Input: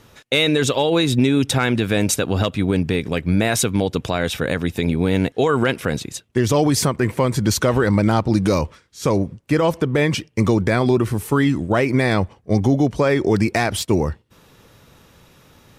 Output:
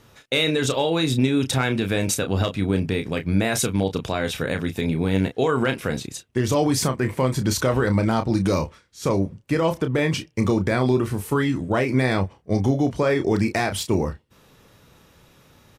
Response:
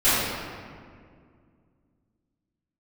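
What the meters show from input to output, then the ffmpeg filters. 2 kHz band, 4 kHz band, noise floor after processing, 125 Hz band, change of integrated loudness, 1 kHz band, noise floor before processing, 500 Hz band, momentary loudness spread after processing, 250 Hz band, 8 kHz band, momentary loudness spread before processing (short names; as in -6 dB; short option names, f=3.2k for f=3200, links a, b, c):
-3.5 dB, -3.5 dB, -56 dBFS, -3.0 dB, -3.5 dB, -3.5 dB, -53 dBFS, -3.5 dB, 5 LU, -3.5 dB, -3.5 dB, 5 LU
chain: -filter_complex "[0:a]asplit=2[a][b];[b]adelay=31,volume=-8dB[c];[a][c]amix=inputs=2:normalize=0,volume=-4dB"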